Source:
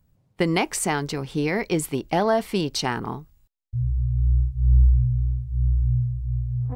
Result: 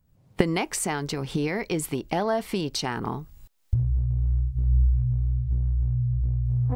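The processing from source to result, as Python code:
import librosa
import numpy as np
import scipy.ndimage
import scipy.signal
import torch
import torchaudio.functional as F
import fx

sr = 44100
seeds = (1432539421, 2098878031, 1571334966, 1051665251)

y = fx.recorder_agc(x, sr, target_db=-14.0, rise_db_per_s=42.0, max_gain_db=30)
y = fx.lowpass(y, sr, hz=4800.0, slope=12, at=(5.36, 6.45))
y = y * 10.0 ** (-4.5 / 20.0)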